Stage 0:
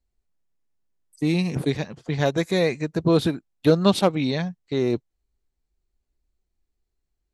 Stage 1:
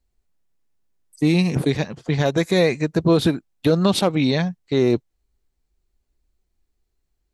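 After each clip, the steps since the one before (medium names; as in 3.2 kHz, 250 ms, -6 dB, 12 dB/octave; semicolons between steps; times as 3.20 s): peak limiter -12.5 dBFS, peak gain reduction 7 dB; trim +5 dB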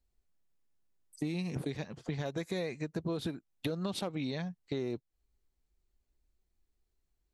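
compression 4:1, threshold -28 dBFS, peak gain reduction 13.5 dB; trim -6.5 dB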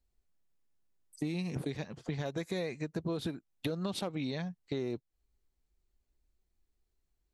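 no audible change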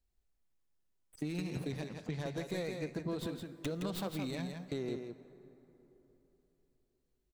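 tracing distortion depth 0.14 ms; delay 166 ms -6 dB; plate-style reverb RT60 3.7 s, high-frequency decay 0.5×, DRR 13.5 dB; trim -3 dB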